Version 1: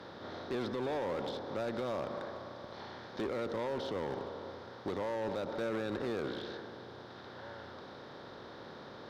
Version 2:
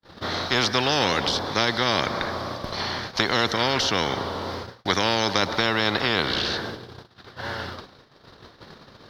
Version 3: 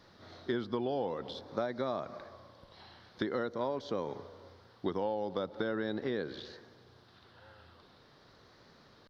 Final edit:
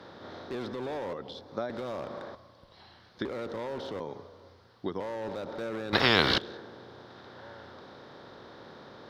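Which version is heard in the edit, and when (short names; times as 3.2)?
1
1.13–1.7 from 3
2.35–3.25 from 3
4–5 from 3
5.93–6.38 from 2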